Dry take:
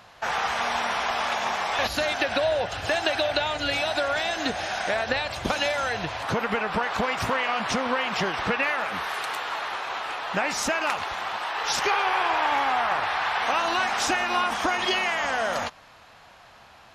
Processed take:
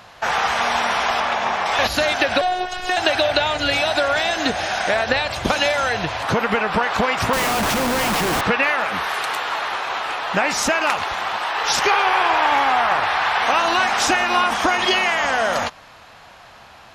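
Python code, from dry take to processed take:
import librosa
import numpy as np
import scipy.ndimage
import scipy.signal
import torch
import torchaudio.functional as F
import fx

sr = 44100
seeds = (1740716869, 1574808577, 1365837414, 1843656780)

y = fx.lowpass(x, sr, hz=2900.0, slope=6, at=(1.2, 1.66))
y = fx.robotise(y, sr, hz=363.0, at=(2.41, 2.97))
y = fx.schmitt(y, sr, flips_db=-32.0, at=(7.33, 8.41))
y = F.gain(torch.from_numpy(y), 6.5).numpy()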